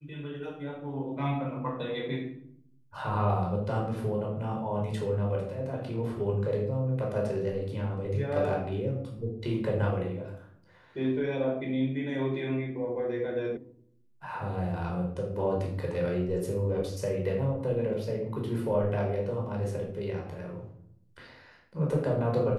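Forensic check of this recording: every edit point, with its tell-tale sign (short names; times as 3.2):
13.57 sound cut off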